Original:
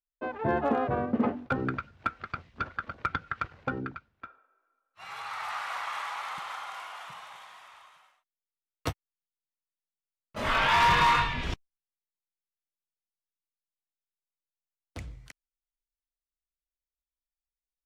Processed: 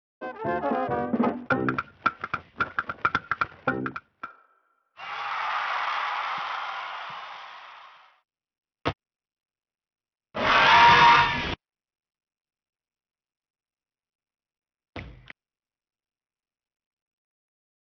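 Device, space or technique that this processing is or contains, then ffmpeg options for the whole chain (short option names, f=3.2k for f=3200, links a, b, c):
Bluetooth headset: -af "highpass=f=210:p=1,dynaudnorm=f=250:g=9:m=7dB,aresample=8000,aresample=44100" -ar 44100 -c:a sbc -b:a 64k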